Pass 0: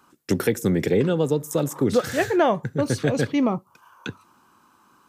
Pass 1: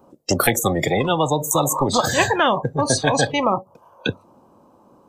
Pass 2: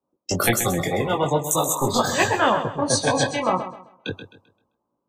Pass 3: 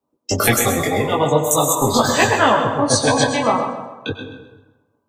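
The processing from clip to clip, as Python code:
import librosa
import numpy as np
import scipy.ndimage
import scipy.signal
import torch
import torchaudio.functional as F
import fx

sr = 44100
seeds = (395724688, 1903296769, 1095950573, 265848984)

y1 = fx.noise_reduce_blind(x, sr, reduce_db=21)
y1 = fx.curve_eq(y1, sr, hz=(380.0, 560.0, 1500.0, 5000.0), db=(0, 11, -21, -17))
y1 = fx.spectral_comp(y1, sr, ratio=10.0)
y1 = y1 * librosa.db_to_amplitude(1.0)
y2 = fx.chorus_voices(y1, sr, voices=2, hz=0.41, base_ms=20, depth_ms=2.8, mix_pct=40)
y2 = fx.echo_feedback(y2, sr, ms=131, feedback_pct=46, wet_db=-9.0)
y2 = fx.band_widen(y2, sr, depth_pct=70)
y3 = fx.notch_comb(y2, sr, f0_hz=180.0)
y3 = fx.rev_plate(y3, sr, seeds[0], rt60_s=1.1, hf_ratio=0.55, predelay_ms=85, drr_db=7.5)
y3 = y3 * librosa.db_to_amplitude(5.5)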